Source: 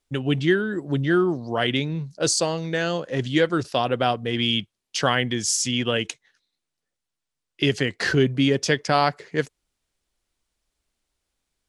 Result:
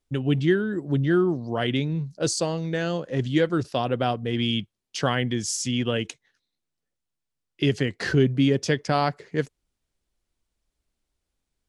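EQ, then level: low shelf 450 Hz +7.5 dB; -5.5 dB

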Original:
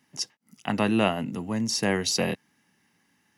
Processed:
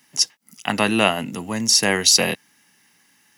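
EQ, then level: tilt +2.5 dB/oct; low shelf 77 Hz +6 dB; +6.5 dB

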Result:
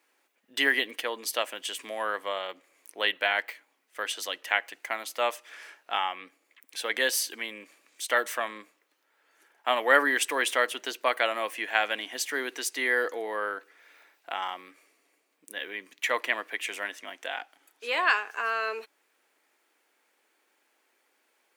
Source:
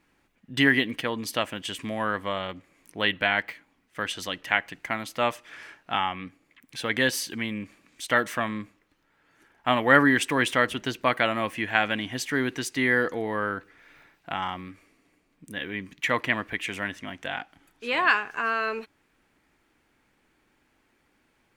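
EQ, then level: ladder high-pass 350 Hz, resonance 25%; high shelf 3800 Hz +7 dB; high shelf 11000 Hz +4.5 dB; +2.0 dB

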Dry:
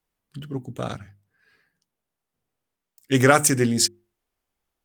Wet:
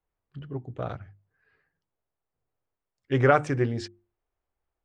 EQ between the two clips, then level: tape spacing loss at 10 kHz 41 dB; bell 220 Hz -11 dB 0.85 oct; +1.0 dB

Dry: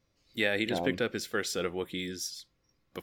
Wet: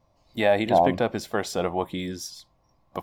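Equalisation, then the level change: low shelf 360 Hz +9.5 dB; band shelf 810 Hz +16 dB 1.1 oct; 0.0 dB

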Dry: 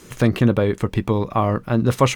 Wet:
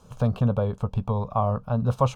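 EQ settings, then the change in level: LPF 1400 Hz 6 dB/oct; fixed phaser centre 810 Hz, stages 4; -1.5 dB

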